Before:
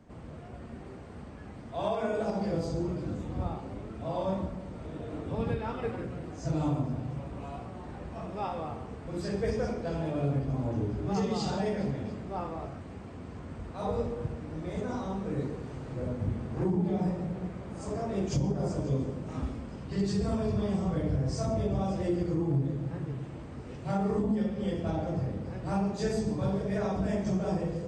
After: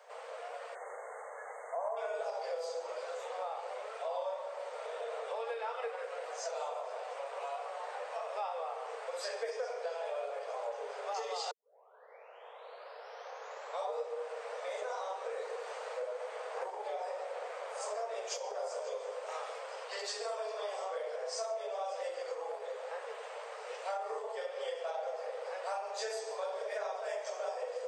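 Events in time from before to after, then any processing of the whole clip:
0.75–1.97 s: spectral selection erased 2.2–6.2 kHz
11.51 s: tape start 2.45 s
whole clip: steep high-pass 460 Hz 96 dB/octave; compression 4:1, threshold -44 dBFS; trim +7.5 dB

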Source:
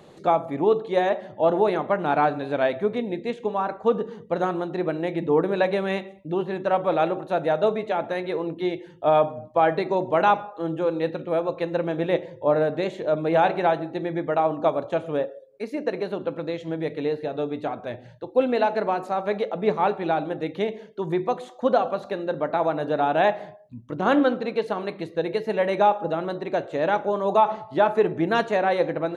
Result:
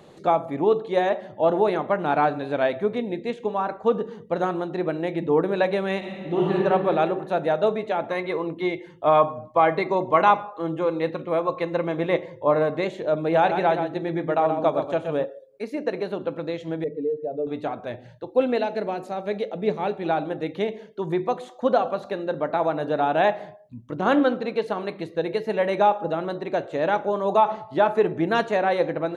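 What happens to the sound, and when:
5.98–6.54 s: reverb throw, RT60 2.3 s, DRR -6 dB
8.08–12.85 s: small resonant body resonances 1.1/2.1 kHz, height 14 dB
13.39–15.24 s: delay 125 ms -7.5 dB
16.84–17.47 s: spectral contrast enhancement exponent 2
18.58–20.05 s: peaking EQ 1.1 kHz -9.5 dB 1.2 oct

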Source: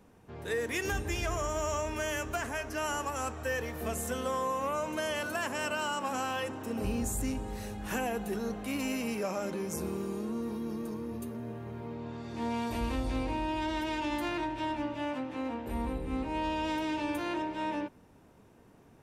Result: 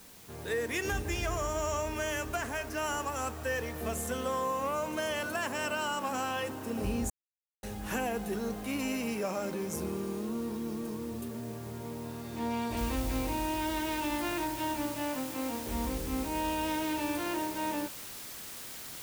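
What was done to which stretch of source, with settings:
7.10–7.63 s: mute
12.77 s: noise floor step -54 dB -44 dB

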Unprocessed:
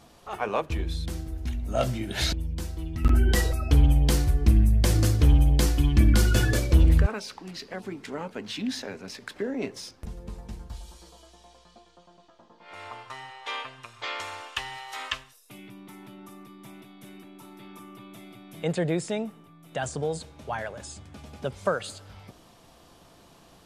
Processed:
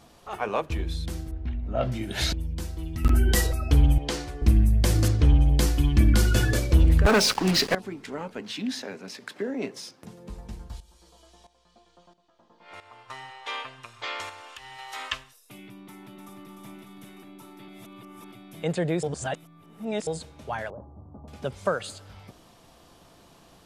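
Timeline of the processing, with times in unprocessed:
1.31–1.92 s: distance through air 350 m
2.83–3.47 s: treble shelf 6.1 kHz +7.5 dB
3.98–4.42 s: three-band isolator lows -16 dB, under 270 Hz, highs -17 dB, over 7.6 kHz
5.08–5.49 s: distance through air 72 m
7.05–7.75 s: waveshaping leveller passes 5
8.41–10.30 s: high-pass 130 Hz 24 dB/octave
10.80–13.09 s: tremolo saw up 1.5 Hz, depth 80%
14.29–14.79 s: compression, threshold -40 dBFS
15.85–16.44 s: echo throw 300 ms, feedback 70%, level -5.5 dB
17.68–18.32 s: reverse
19.03–20.07 s: reverse
20.70–21.28 s: steep low-pass 1.1 kHz 48 dB/octave

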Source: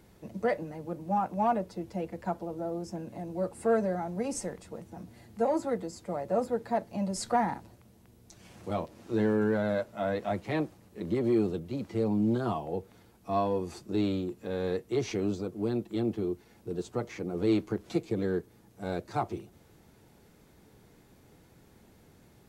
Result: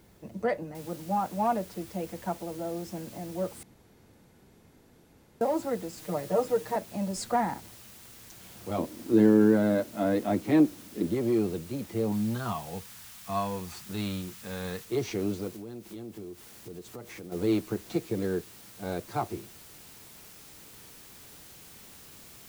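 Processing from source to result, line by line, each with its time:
0.75 s: noise floor step -70 dB -51 dB
3.63–5.41 s: room tone
5.97–6.76 s: comb 6.5 ms, depth 88%
8.78–11.07 s: peaking EQ 280 Hz +14.5 dB
12.12–14.85 s: FFT filter 200 Hz 0 dB, 330 Hz -12 dB, 1.2 kHz +3 dB
15.56–17.32 s: compression 4:1, threshold -40 dBFS

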